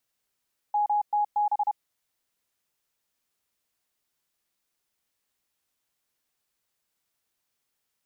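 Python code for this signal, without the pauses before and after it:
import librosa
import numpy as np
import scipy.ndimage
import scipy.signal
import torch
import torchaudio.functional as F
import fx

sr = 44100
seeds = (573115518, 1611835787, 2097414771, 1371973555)

y = fx.morse(sr, text='MTB', wpm=31, hz=832.0, level_db=-21.0)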